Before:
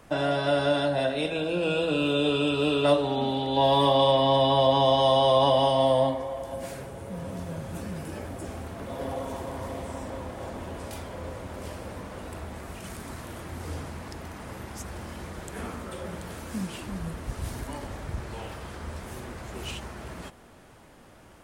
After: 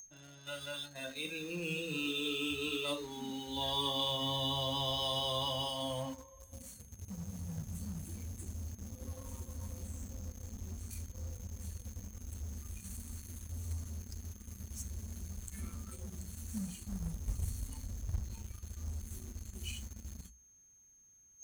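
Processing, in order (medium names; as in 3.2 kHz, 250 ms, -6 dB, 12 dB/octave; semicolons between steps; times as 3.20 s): whistle 6.4 kHz -38 dBFS; spectral noise reduction 17 dB; amplifier tone stack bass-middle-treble 6-0-2; hum notches 60/120/180/240/300/360 Hz; in parallel at -8 dB: companded quantiser 4-bit; on the sum: trim +8.5 dB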